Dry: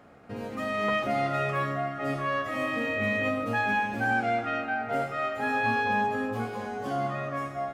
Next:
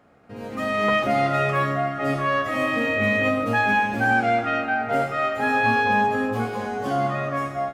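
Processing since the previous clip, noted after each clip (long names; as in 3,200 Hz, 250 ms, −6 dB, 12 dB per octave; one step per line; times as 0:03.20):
automatic gain control gain up to 10 dB
level −3.5 dB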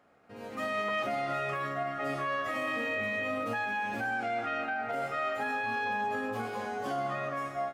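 low-shelf EQ 270 Hz −9.5 dB
brickwall limiter −19.5 dBFS, peak gain reduction 8 dB
level −5.5 dB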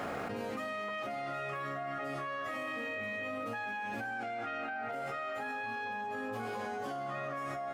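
envelope flattener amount 100%
level −8 dB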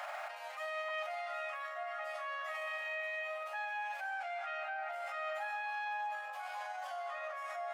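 brickwall limiter −36 dBFS, peak gain reduction 8 dB
Chebyshev high-pass with heavy ripple 590 Hz, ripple 3 dB
level +5 dB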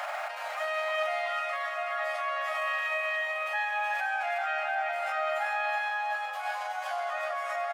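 repeating echo 372 ms, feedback 44%, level −5 dB
level +8 dB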